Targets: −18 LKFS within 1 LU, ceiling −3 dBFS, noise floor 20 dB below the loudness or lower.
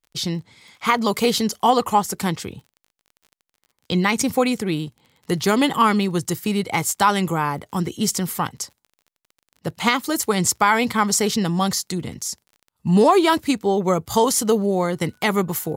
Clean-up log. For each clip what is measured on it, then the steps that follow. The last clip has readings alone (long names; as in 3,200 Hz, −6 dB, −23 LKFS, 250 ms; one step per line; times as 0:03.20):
crackle rate 28 per second; integrated loudness −20.5 LKFS; sample peak −2.5 dBFS; target loudness −18.0 LKFS
→ click removal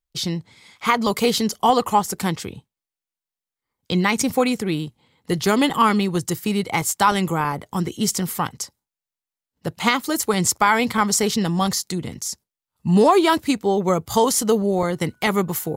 crackle rate 0.063 per second; integrated loudness −20.5 LKFS; sample peak −2.5 dBFS; target loudness −18.0 LKFS
→ level +2.5 dB
brickwall limiter −3 dBFS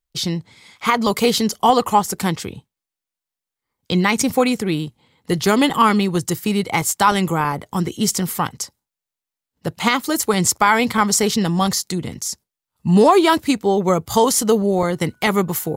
integrated loudness −18.0 LKFS; sample peak −3.0 dBFS; background noise floor −87 dBFS